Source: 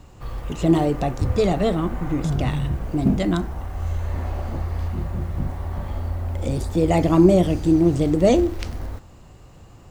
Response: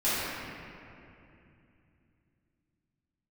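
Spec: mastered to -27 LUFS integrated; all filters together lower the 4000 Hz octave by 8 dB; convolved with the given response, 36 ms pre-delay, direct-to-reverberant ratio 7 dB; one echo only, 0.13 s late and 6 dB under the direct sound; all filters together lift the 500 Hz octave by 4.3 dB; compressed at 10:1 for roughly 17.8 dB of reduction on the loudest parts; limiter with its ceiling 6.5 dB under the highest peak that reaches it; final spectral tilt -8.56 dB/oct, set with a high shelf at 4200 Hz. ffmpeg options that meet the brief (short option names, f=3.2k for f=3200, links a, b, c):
-filter_complex "[0:a]equalizer=f=500:t=o:g=6,equalizer=f=4k:t=o:g=-6,highshelf=f=4.2k:g=-9,acompressor=threshold=-26dB:ratio=10,alimiter=limit=-23dB:level=0:latency=1,aecho=1:1:130:0.501,asplit=2[a][b];[1:a]atrim=start_sample=2205,adelay=36[c];[b][c]afir=irnorm=-1:irlink=0,volume=-20dB[d];[a][d]amix=inputs=2:normalize=0,volume=3dB"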